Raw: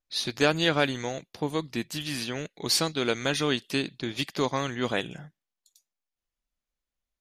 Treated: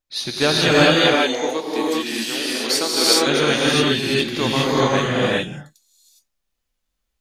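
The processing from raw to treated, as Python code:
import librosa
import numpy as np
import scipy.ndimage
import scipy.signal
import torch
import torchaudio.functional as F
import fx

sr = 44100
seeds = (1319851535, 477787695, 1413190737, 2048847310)

y = fx.highpass(x, sr, hz=260.0, slope=24, at=(0.74, 3.27))
y = fx.rev_gated(y, sr, seeds[0], gate_ms=440, shape='rising', drr_db=-6.5)
y = y * 10.0 ** (3.0 / 20.0)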